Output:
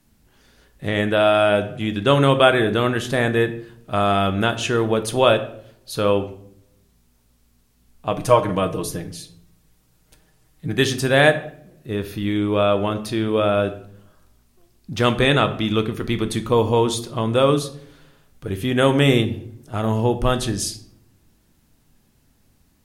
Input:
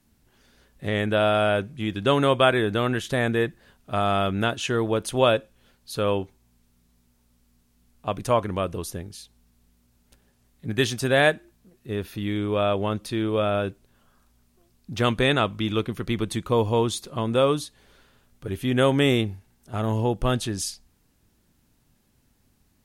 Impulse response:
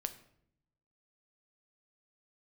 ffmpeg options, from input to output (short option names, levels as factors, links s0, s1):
-filter_complex "[0:a]asettb=1/sr,asplit=3[s0][s1][s2];[s0]atrim=end=8.114[s3];[s1]atrim=start=8.11:end=10.73,asetpts=PTS-STARTPTS,afade=t=in:d=0.004:c=qsin,afade=t=out:st=2.616:d=0.004:c=qsin,aecho=1:1:6.4:0.65,atrim=end_sample=115542[s4];[s2]atrim=start=10.726[s5];[s3][s4]acrossfade=d=0.004:c1=hsin:c2=qsin[s6];[s6][s5]acrossfade=d=0.004:c1=qsin:c2=hsin[s7];[1:a]atrim=start_sample=2205,asetrate=48510,aresample=44100[s8];[s7][s8]afir=irnorm=-1:irlink=0,volume=2"